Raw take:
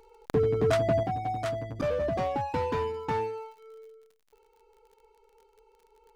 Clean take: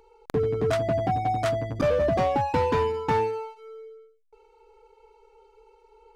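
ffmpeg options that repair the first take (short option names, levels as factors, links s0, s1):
-af "adeclick=t=4,asetnsamples=n=441:p=0,asendcmd='1.03 volume volume 6dB',volume=1"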